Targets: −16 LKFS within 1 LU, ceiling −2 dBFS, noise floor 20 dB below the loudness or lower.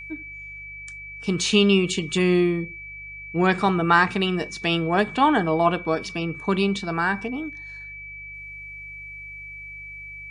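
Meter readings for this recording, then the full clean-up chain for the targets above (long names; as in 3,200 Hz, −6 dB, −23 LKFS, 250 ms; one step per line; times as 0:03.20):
mains hum 50 Hz; hum harmonics up to 150 Hz; level of the hum −46 dBFS; interfering tone 2,300 Hz; level of the tone −36 dBFS; integrated loudness −22.0 LKFS; sample peak −5.0 dBFS; target loudness −16.0 LKFS
→ hum removal 50 Hz, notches 3
notch filter 2,300 Hz, Q 30
level +6 dB
brickwall limiter −2 dBFS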